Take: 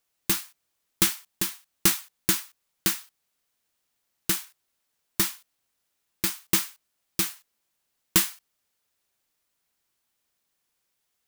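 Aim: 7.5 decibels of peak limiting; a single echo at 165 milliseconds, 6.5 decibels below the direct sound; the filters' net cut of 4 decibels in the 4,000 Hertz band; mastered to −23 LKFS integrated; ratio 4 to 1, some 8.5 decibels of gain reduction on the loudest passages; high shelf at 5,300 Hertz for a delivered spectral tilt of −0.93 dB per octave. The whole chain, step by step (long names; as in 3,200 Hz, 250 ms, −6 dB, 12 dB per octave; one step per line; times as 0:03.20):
parametric band 4,000 Hz −7.5 dB
high-shelf EQ 5,300 Hz +4.5 dB
downward compressor 4 to 1, threshold −24 dBFS
brickwall limiter −11.5 dBFS
single-tap delay 165 ms −6.5 dB
level +10 dB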